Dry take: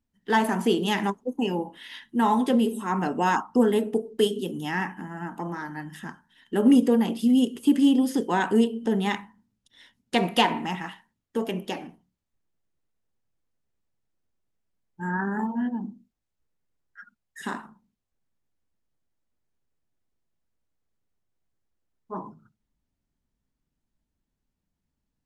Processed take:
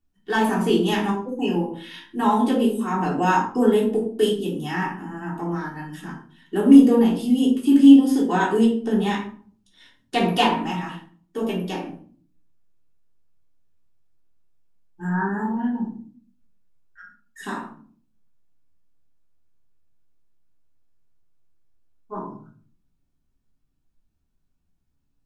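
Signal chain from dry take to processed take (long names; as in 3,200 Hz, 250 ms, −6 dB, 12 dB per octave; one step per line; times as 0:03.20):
notch filter 2,000 Hz, Q 11
rectangular room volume 370 cubic metres, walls furnished, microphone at 3.4 metres
level −3 dB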